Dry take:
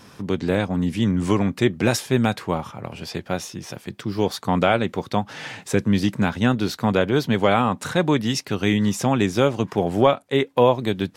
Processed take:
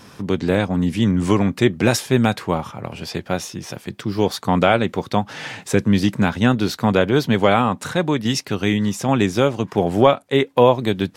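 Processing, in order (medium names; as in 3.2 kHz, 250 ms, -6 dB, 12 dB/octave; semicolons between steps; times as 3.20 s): 7.42–9.75 s: tremolo saw down 1.2 Hz, depth 40%; trim +3 dB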